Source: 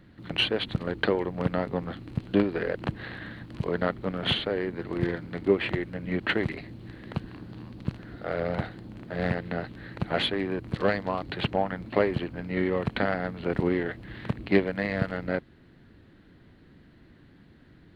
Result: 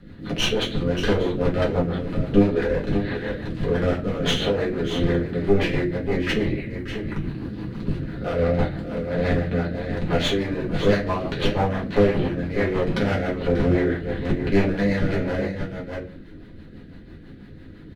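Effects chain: 6.16–7.24 s: touch-sensitive phaser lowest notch 510 Hz, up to 1.4 kHz, full sweep at -23 dBFS; one-sided clip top -28.5 dBFS; on a send: delay 587 ms -9.5 dB; on the sum: simulated room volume 32 m³, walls mixed, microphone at 1.2 m; in parallel at -2.5 dB: compression, threshold -28 dBFS, peak gain reduction 17.5 dB; on the sum: rotary cabinet horn 6 Hz; trim -1.5 dB

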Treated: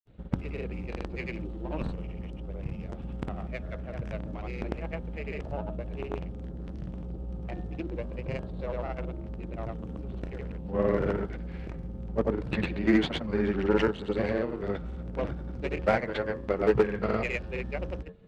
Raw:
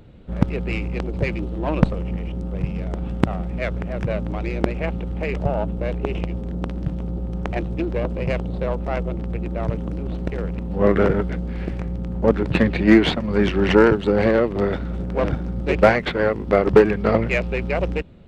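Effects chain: de-hum 90.21 Hz, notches 20; granulator, pitch spread up and down by 0 st; trim -9 dB

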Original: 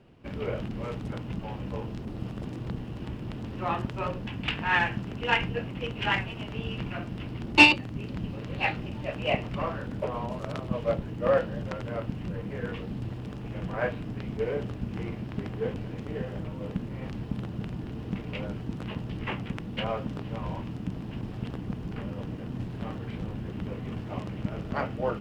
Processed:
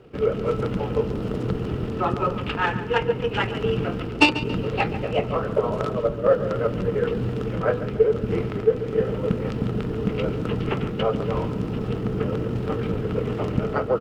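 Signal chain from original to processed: de-hum 82.45 Hz, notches 31; dynamic bell 2.2 kHz, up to -5 dB, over -45 dBFS, Q 1.4; small resonant body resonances 440/1300 Hz, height 12 dB, ringing for 35 ms; gain riding within 3 dB 0.5 s; tempo 1.8×; on a send: tape echo 140 ms, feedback 45%, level -12.5 dB, low-pass 5.6 kHz; on the sum: trim +5.5 dB

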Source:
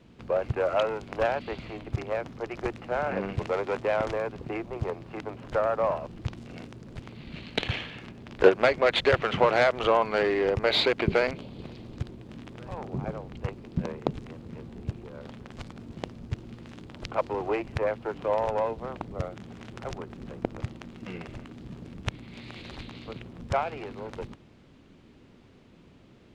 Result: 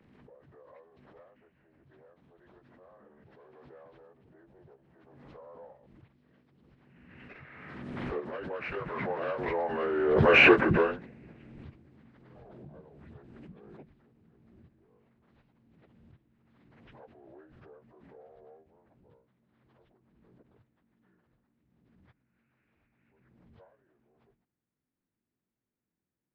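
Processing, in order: frequency axis rescaled in octaves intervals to 83%; Doppler pass-by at 10.45 s, 12 m/s, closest 1.7 m; swell ahead of each attack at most 30 dB/s; trim +7.5 dB

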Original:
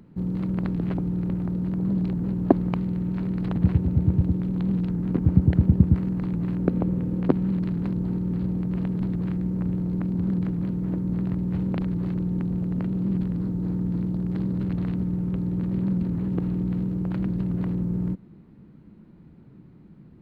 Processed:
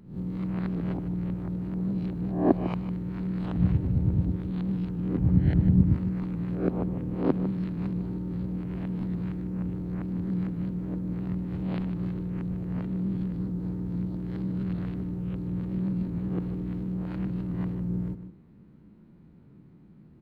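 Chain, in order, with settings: reverse spectral sustain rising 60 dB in 0.48 s; echo from a far wall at 26 m, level -11 dB; trim -6 dB

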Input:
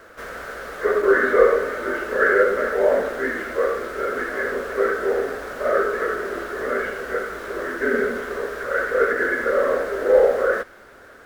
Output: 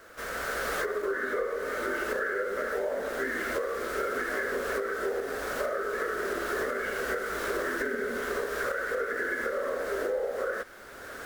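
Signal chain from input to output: recorder AGC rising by 17 dB/s; treble shelf 3.4 kHz +8 dB; compression, threshold -20 dBFS, peak gain reduction 11.5 dB; trim -7.5 dB

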